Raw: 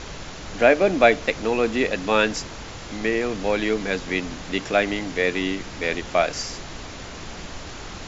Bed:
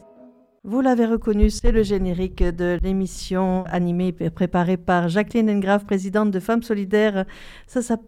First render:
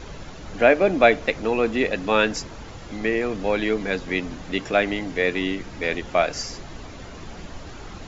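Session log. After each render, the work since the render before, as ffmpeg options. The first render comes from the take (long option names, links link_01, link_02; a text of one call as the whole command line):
ffmpeg -i in.wav -af "afftdn=noise_reduction=8:noise_floor=-37" out.wav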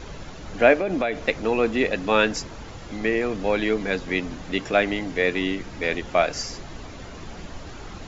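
ffmpeg -i in.wav -filter_complex "[0:a]asettb=1/sr,asplit=3[link_01][link_02][link_03];[link_01]atrim=end=0.744[link_04];[link_02]atrim=start=0.74:end=1.19,asetpts=PTS-STARTPTS,afade=type=in:duration=0.004:curve=qsin,afade=type=out:start_time=0.446:duration=0.004:curve=qsin,acompressor=threshold=-20dB:ratio=6:attack=3.2:release=140:knee=1:detection=peak[link_05];[link_03]atrim=start=1.186[link_06];[link_04][link_05]acrossfade=duration=0.004:curve1=hsin:curve2=qsin[link_07];[link_07][link_06]acrossfade=duration=0.004:curve1=qsin:curve2=hsin" out.wav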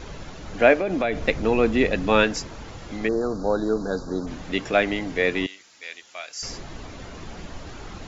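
ffmpeg -i in.wav -filter_complex "[0:a]asettb=1/sr,asplit=3[link_01][link_02][link_03];[link_01]atrim=end=1.044[link_04];[link_02]atrim=start=1.04:end=2.24,asetpts=PTS-STARTPTS,afade=type=in:duration=0.004:curve=qsin,afade=type=out:start_time=1.196:duration=0.004:curve=qsin,lowshelf=frequency=190:gain=9[link_05];[link_03]atrim=start=2.236[link_06];[link_04][link_05]acrossfade=duration=0.004:curve1=hsin:curve2=qsin[link_07];[link_07][link_06]acrossfade=duration=0.004:curve1=qsin:curve2=hsin,asplit=3[link_08][link_09][link_10];[link_08]afade=type=out:start_time=3.07:duration=0.02[link_11];[link_09]asuperstop=centerf=2500:order=12:qfactor=1,afade=type=in:start_time=3.07:duration=0.02,afade=type=out:start_time=4.26:duration=0.02[link_12];[link_10]afade=type=in:start_time=4.26:duration=0.02[link_13];[link_11][link_12][link_13]amix=inputs=3:normalize=0,asettb=1/sr,asplit=3[link_14][link_15][link_16];[link_14]atrim=end=5.464[link_17];[link_15]atrim=start=5.46:end=6.43,asetpts=PTS-STARTPTS,afade=type=in:duration=0.004:curve=qsin,afade=type=out:start_time=0.966:duration=0.004:curve=qsin,aderivative[link_18];[link_16]atrim=start=6.426[link_19];[link_17][link_18]acrossfade=duration=0.004:curve1=hsin:curve2=qsin[link_20];[link_20][link_19]acrossfade=duration=0.004:curve1=qsin:curve2=hsin" out.wav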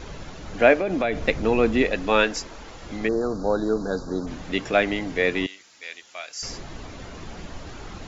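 ffmpeg -i in.wav -filter_complex "[0:a]asettb=1/sr,asplit=3[link_01][link_02][link_03];[link_01]atrim=end=1.824[link_04];[link_02]atrim=start=1.82:end=2.83,asetpts=PTS-STARTPTS,afade=type=in:duration=0.004:curve=qsin,afade=type=out:start_time=1.006:duration=0.004:curve=qsin,equalizer=frequency=110:width_type=o:width=1.8:gain=-10.5[link_05];[link_03]atrim=start=2.826[link_06];[link_04][link_05]acrossfade=duration=0.004:curve1=hsin:curve2=qsin[link_07];[link_07][link_06]acrossfade=duration=0.004:curve1=qsin:curve2=hsin" out.wav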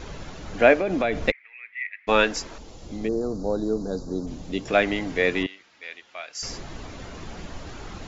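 ffmpeg -i in.wav -filter_complex "[0:a]asplit=3[link_01][link_02][link_03];[link_01]afade=type=out:start_time=1.3:duration=0.02[link_04];[link_02]asuperpass=centerf=2100:order=4:qfactor=4.9,afade=type=in:start_time=1.3:duration=0.02,afade=type=out:start_time=2.07:duration=0.02[link_05];[link_03]afade=type=in:start_time=2.07:duration=0.02[link_06];[link_04][link_05][link_06]amix=inputs=3:normalize=0,asettb=1/sr,asplit=3[link_07][link_08][link_09];[link_07]atrim=end=2.584[link_10];[link_08]atrim=start=2.58:end=4.68,asetpts=PTS-STARTPTS,afade=type=in:duration=0.004:curve=qsin,afade=type=out:start_time=2.096:duration=0.004:curve=qsin,equalizer=frequency=1600:width_type=o:width=1.8:gain=-14[link_11];[link_09]atrim=start=4.676[link_12];[link_10][link_11]acrossfade=duration=0.004:curve1=hsin:curve2=qsin[link_13];[link_13][link_12]acrossfade=duration=0.004:curve1=qsin:curve2=hsin,asettb=1/sr,asplit=3[link_14][link_15][link_16];[link_14]atrim=end=5.434[link_17];[link_15]atrim=start=5.43:end=6.35,asetpts=PTS-STARTPTS,afade=type=in:duration=0.004:curve=qsin,afade=type=out:start_time=0.916:duration=0.004:curve=qsin,lowpass=3200[link_18];[link_16]atrim=start=6.346[link_19];[link_17][link_18]acrossfade=duration=0.004:curve1=hsin:curve2=qsin[link_20];[link_20][link_19]acrossfade=duration=0.004:curve1=qsin:curve2=hsin" out.wav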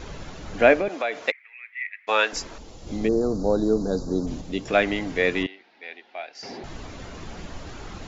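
ffmpeg -i in.wav -filter_complex "[0:a]asettb=1/sr,asplit=3[link_01][link_02][link_03];[link_01]atrim=end=0.884[link_04];[link_02]atrim=start=0.88:end=2.33,asetpts=PTS-STARTPTS,afade=type=in:duration=0.004:curve=qsin,afade=type=out:start_time=1.446:duration=0.004:curve=qsin,highpass=560[link_05];[link_03]atrim=start=2.326[link_06];[link_04][link_05]acrossfade=duration=0.004:curve1=hsin:curve2=qsin[link_07];[link_07][link_06]acrossfade=duration=0.004:curve1=qsin:curve2=hsin,asettb=1/sr,asplit=3[link_08][link_09][link_10];[link_08]atrim=end=5.474[link_11];[link_09]atrim=start=5.47:end=6.64,asetpts=PTS-STARTPTS,afade=type=in:duration=0.004:curve=qsin,afade=type=out:start_time=1.166:duration=0.004:curve=qsin,highpass=210,equalizer=frequency=240:width_type=q:width=4:gain=7,equalizer=frequency=380:width_type=q:width=4:gain=7,equalizer=frequency=770:width_type=q:width=4:gain=10,equalizer=frequency=1200:width_type=q:width=4:gain=-8,equalizer=frequency=3100:width_type=q:width=4:gain=-4,lowpass=frequency=4300:width=0.5412,lowpass=frequency=4300:width=1.3066[link_12];[link_10]atrim=start=6.636[link_13];[link_11][link_12]acrossfade=duration=0.004:curve1=hsin:curve2=qsin[link_14];[link_14][link_13]acrossfade=duration=0.004:curve1=qsin:curve2=hsin,asplit=3[link_15][link_16][link_17];[link_15]atrim=end=2.872[link_18];[link_16]atrim=start=2.868:end=4.412,asetpts=PTS-STARTPTS,volume=4dB[link_19];[link_17]atrim=start=4.408[link_20];[link_18][link_19]acrossfade=duration=0.004:curve1=hsin:curve2=hsin[link_21];[link_21][link_20]acrossfade=duration=0.004:curve1=hsin:curve2=hsin" out.wav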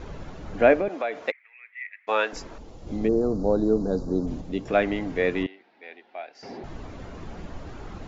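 ffmpeg -i in.wav -af "highshelf=frequency=2200:gain=-11.5" out.wav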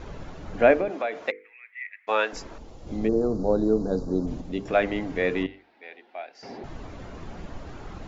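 ffmpeg -i in.wav -af "bandreject=frequency=50:width_type=h:width=6,bandreject=frequency=100:width_type=h:width=6,bandreject=frequency=150:width_type=h:width=6,bandreject=frequency=200:width_type=h:width=6,bandreject=frequency=250:width_type=h:width=6,bandreject=frequency=300:width_type=h:width=6,bandreject=frequency=350:width_type=h:width=6,bandreject=frequency=400:width_type=h:width=6,bandreject=frequency=450:width_type=h:width=6,bandreject=frequency=500:width_type=h:width=6" out.wav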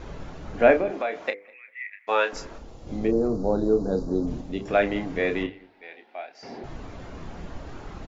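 ffmpeg -i in.wav -filter_complex "[0:a]asplit=2[link_01][link_02];[link_02]adelay=30,volume=-8.5dB[link_03];[link_01][link_03]amix=inputs=2:normalize=0,asplit=2[link_04][link_05];[link_05]adelay=200,lowpass=frequency=1900:poles=1,volume=-23.5dB,asplit=2[link_06][link_07];[link_07]adelay=200,lowpass=frequency=1900:poles=1,volume=0.18[link_08];[link_04][link_06][link_08]amix=inputs=3:normalize=0" out.wav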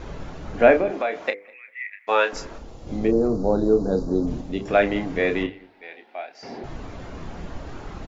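ffmpeg -i in.wav -af "volume=3dB,alimiter=limit=-2dB:level=0:latency=1" out.wav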